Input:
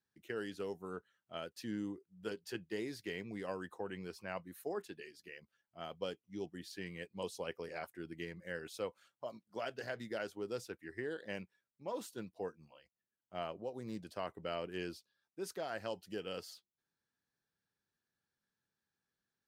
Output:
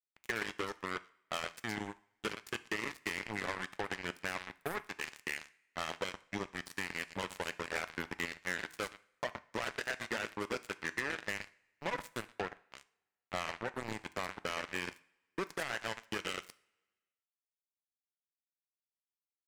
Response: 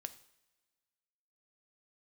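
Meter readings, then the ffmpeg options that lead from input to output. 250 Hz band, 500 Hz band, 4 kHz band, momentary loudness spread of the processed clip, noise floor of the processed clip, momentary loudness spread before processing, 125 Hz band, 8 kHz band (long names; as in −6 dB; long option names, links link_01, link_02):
0.0 dB, −1.0 dB, +7.0 dB, 5 LU, below −85 dBFS, 8 LU, +1.5 dB, +8.0 dB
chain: -filter_complex "[0:a]crystalizer=i=2:c=0,acompressor=threshold=-50dB:ratio=12,bass=frequency=250:gain=-3,treble=frequency=4000:gain=-11,aecho=1:1:121:0.398,acrusher=bits=7:mix=0:aa=0.5,asplit=2[link_01][link_02];[link_02]equalizer=frequency=500:width_type=o:width=1:gain=-3,equalizer=frequency=1000:width_type=o:width=1:gain=5,equalizer=frequency=2000:width_type=o:width=1:gain=11,equalizer=frequency=8000:width_type=o:width=1:gain=8[link_03];[1:a]atrim=start_sample=2205,asetrate=57330,aresample=44100[link_04];[link_03][link_04]afir=irnorm=-1:irlink=0,volume=1.5dB[link_05];[link_01][link_05]amix=inputs=2:normalize=0,asoftclip=type=tanh:threshold=-37.5dB,volume=13dB"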